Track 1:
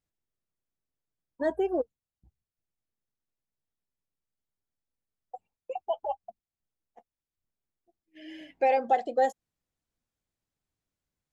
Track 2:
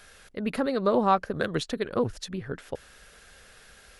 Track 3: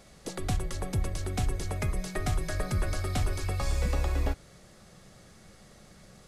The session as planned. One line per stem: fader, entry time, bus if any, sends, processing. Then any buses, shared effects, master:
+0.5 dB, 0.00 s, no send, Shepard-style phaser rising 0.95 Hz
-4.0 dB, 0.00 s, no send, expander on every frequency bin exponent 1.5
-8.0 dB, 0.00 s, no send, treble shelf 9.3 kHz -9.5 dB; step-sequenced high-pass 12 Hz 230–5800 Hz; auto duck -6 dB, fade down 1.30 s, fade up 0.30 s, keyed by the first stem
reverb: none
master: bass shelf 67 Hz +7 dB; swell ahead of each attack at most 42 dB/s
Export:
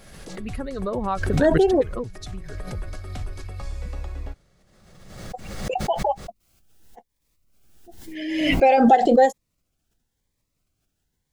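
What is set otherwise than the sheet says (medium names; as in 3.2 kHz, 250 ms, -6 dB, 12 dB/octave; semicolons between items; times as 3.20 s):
stem 1 +0.5 dB -> +10.0 dB; stem 3: missing step-sequenced high-pass 12 Hz 230–5800 Hz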